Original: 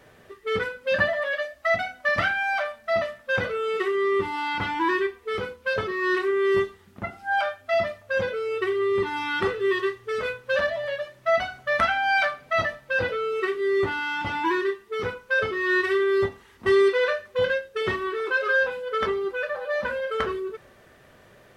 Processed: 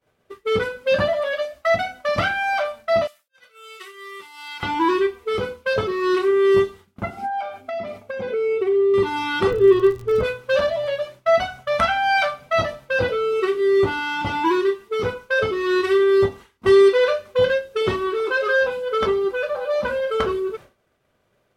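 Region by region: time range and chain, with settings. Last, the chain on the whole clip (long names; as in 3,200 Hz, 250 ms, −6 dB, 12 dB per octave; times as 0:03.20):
0:03.07–0:04.63: volume swells 298 ms + first difference
0:07.17–0:08.94: downward compressor 10 to 1, threshold −36 dBFS + hollow resonant body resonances 250/400/740/2,200 Hz, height 14 dB, ringing for 35 ms
0:09.50–0:10.23: spectral tilt −3.5 dB per octave + surface crackle 55 per second −35 dBFS
0:11.46–0:12.49: parametric band 340 Hz −14 dB 0.38 octaves + notch filter 4,400 Hz, Q 18
whole clip: downward expander −40 dBFS; notch filter 1,800 Hz, Q 7.8; dynamic equaliser 1,800 Hz, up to −5 dB, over −38 dBFS, Q 0.93; level +6.5 dB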